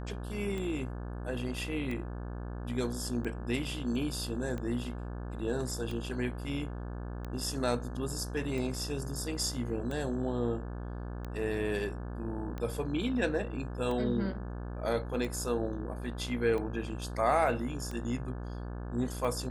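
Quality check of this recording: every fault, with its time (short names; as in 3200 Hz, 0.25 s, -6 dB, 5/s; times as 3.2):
buzz 60 Hz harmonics 29 -39 dBFS
tick 45 rpm -26 dBFS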